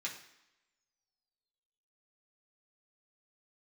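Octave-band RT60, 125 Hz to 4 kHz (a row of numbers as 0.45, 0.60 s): 0.70, 0.85, 0.90, 0.90, 0.90, 0.90 s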